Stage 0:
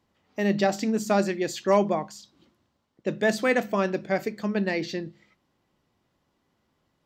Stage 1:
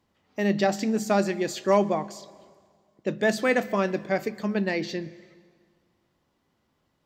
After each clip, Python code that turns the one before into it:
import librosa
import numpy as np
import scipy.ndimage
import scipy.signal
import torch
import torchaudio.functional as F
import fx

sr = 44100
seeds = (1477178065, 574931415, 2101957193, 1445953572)

y = fx.rev_plate(x, sr, seeds[0], rt60_s=1.9, hf_ratio=0.85, predelay_ms=105, drr_db=20.0)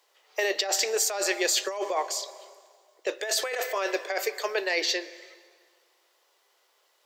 y = scipy.signal.sosfilt(scipy.signal.butter(8, 400.0, 'highpass', fs=sr, output='sos'), x)
y = fx.high_shelf(y, sr, hz=2500.0, db=10.5)
y = fx.over_compress(y, sr, threshold_db=-28.0, ratio=-1.0)
y = y * 10.0 ** (1.0 / 20.0)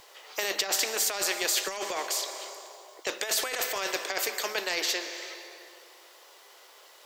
y = fx.spectral_comp(x, sr, ratio=2.0)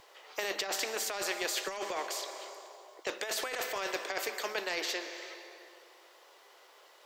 y = fx.high_shelf(x, sr, hz=3900.0, db=-8.5)
y = y * 10.0 ** (-2.5 / 20.0)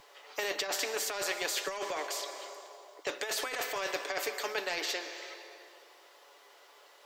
y = x + 0.4 * np.pad(x, (int(7.0 * sr / 1000.0), 0))[:len(x)]